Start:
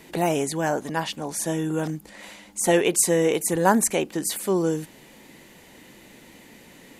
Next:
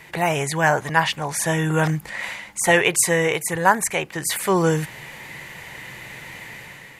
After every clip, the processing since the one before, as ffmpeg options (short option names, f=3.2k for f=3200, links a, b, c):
-af "equalizer=f=125:t=o:w=1:g=12,equalizer=f=250:t=o:w=1:g=-12,equalizer=f=1k:t=o:w=1:g=5,equalizer=f=2k:t=o:w=1:g=10,dynaudnorm=f=190:g=5:m=7.5dB,volume=-1dB"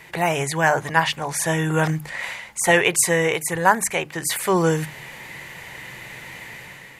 -af "bandreject=f=50:t=h:w=6,bandreject=f=100:t=h:w=6,bandreject=f=150:t=h:w=6,bandreject=f=200:t=h:w=6,bandreject=f=250:t=h:w=6,bandreject=f=300:t=h:w=6"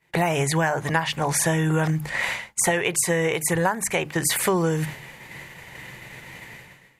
-af "agate=range=-33dB:threshold=-30dB:ratio=3:detection=peak,lowshelf=f=390:g=4.5,acompressor=threshold=-23dB:ratio=12,volume=4.5dB"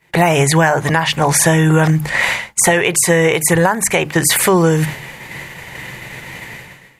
-af "alimiter=level_in=11dB:limit=-1dB:release=50:level=0:latency=1,volume=-1dB"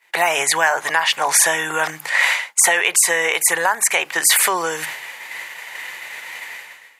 -af "highpass=860"